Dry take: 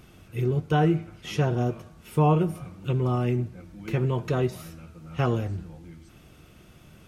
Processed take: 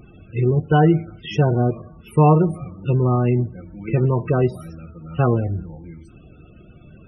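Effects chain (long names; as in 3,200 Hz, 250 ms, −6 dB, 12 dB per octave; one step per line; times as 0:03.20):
spectral peaks only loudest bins 32
level +7 dB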